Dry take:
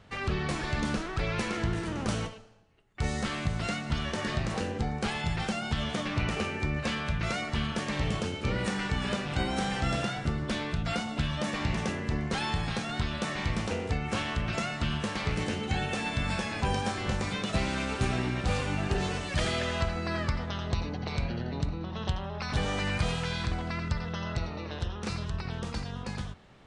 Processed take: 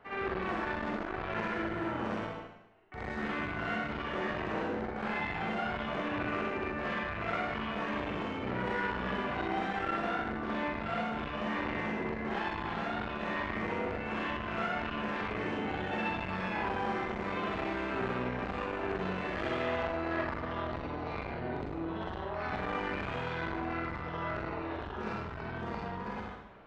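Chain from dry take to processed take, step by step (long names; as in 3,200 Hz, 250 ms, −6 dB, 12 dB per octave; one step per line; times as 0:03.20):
three-way crossover with the lows and the highs turned down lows −14 dB, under 260 Hz, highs −19 dB, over 2,300 Hz
notch filter 530 Hz, Q 12
in parallel at −1 dB: brickwall limiter −29 dBFS, peak gain reduction 8.5 dB
on the sum: hard clipping −23 dBFS, distortion −28 dB
high-frequency loss of the air 84 metres
backwards echo 64 ms −4.5 dB
four-comb reverb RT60 0.78 s, combs from 33 ms, DRR −2 dB
saturating transformer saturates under 840 Hz
level −5.5 dB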